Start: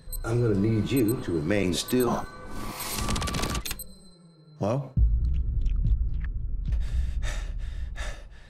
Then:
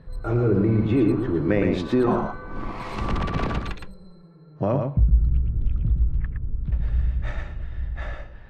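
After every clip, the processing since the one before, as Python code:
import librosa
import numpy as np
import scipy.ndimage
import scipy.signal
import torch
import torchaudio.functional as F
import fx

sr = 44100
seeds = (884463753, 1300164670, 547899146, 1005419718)

y = scipy.signal.sosfilt(scipy.signal.butter(2, 1900.0, 'lowpass', fs=sr, output='sos'), x)
y = y + 10.0 ** (-5.0 / 20.0) * np.pad(y, (int(115 * sr / 1000.0), 0))[:len(y)]
y = y * 10.0 ** (3.5 / 20.0)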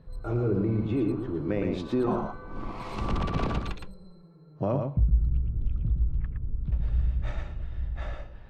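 y = fx.peak_eq(x, sr, hz=1800.0, db=-6.0, octaves=0.55)
y = fx.rider(y, sr, range_db=3, speed_s=2.0)
y = y * 10.0 ** (-5.5 / 20.0)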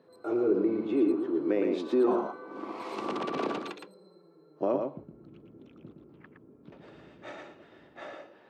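y = fx.ladder_highpass(x, sr, hz=270.0, resonance_pct=40)
y = y * 10.0 ** (7.0 / 20.0)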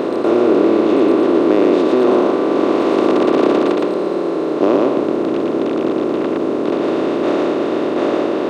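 y = fx.bin_compress(x, sr, power=0.2)
y = y * 10.0 ** (6.5 / 20.0)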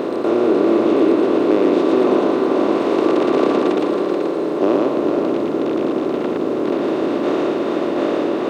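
y = fx.quant_dither(x, sr, seeds[0], bits=10, dither='none')
y = y + 10.0 ** (-6.0 / 20.0) * np.pad(y, (int(431 * sr / 1000.0), 0))[:len(y)]
y = y * 10.0 ** (-3.0 / 20.0)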